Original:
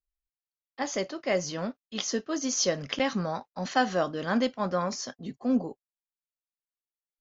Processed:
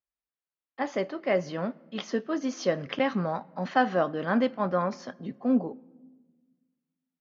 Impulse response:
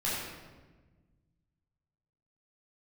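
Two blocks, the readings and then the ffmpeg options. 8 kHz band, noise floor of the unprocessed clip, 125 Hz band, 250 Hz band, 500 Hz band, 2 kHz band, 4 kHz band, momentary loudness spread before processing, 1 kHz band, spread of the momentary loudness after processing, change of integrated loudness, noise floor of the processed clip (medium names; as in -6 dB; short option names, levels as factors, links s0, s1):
no reading, under -85 dBFS, +1.0 dB, +1.5 dB, +2.0 dB, +0.5 dB, -6.5 dB, 9 LU, +1.5 dB, 9 LU, +0.5 dB, under -85 dBFS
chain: -filter_complex "[0:a]highpass=110,lowpass=2400,asplit=2[s0][s1];[1:a]atrim=start_sample=2205[s2];[s1][s2]afir=irnorm=-1:irlink=0,volume=0.0376[s3];[s0][s3]amix=inputs=2:normalize=0,volume=1.19"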